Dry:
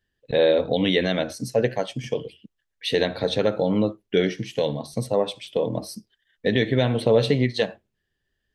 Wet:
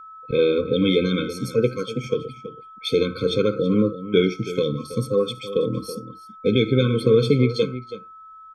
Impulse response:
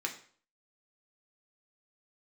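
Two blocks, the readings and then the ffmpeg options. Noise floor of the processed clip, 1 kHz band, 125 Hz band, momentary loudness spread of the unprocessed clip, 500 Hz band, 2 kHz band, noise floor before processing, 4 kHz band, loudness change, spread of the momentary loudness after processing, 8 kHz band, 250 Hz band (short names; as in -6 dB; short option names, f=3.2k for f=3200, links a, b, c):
-44 dBFS, -2.0 dB, +3.0 dB, 11 LU, +1.5 dB, -2.5 dB, -78 dBFS, 0.0 dB, +2.0 dB, 15 LU, -1.5 dB, +3.0 dB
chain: -filter_complex "[0:a]aeval=exprs='val(0)+0.00794*sin(2*PI*1300*n/s)':c=same,asplit=2[a][b];[b]adelay=326.5,volume=-13dB,highshelf=f=4k:g=-7.35[c];[a][c]amix=inputs=2:normalize=0,afftfilt=real='re*eq(mod(floor(b*sr/1024/520),2),0)':imag='im*eq(mod(floor(b*sr/1024/520),2),0)':win_size=1024:overlap=0.75,volume=3dB"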